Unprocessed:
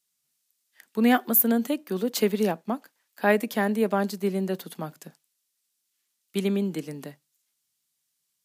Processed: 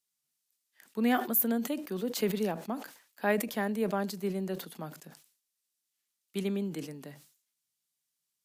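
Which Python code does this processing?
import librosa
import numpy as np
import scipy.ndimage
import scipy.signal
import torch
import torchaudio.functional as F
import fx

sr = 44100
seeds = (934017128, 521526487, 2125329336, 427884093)

y = fx.sustainer(x, sr, db_per_s=110.0)
y = F.gain(torch.from_numpy(y), -7.0).numpy()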